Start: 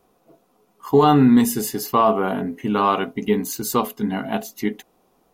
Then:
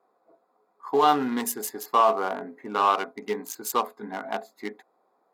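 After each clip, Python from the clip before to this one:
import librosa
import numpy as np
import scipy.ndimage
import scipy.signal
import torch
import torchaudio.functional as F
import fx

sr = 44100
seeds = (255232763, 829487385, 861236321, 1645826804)

y = fx.wiener(x, sr, points=15)
y = scipy.signal.sosfilt(scipy.signal.bessel(2, 700.0, 'highpass', norm='mag', fs=sr, output='sos'), y)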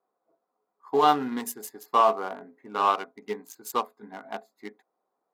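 y = fx.low_shelf(x, sr, hz=89.0, db=9.5)
y = fx.upward_expand(y, sr, threshold_db=-40.0, expansion=1.5)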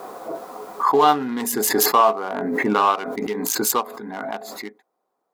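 y = fx.pre_swell(x, sr, db_per_s=21.0)
y = y * librosa.db_to_amplitude(4.0)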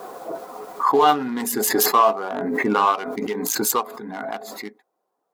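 y = fx.spec_quant(x, sr, step_db=15)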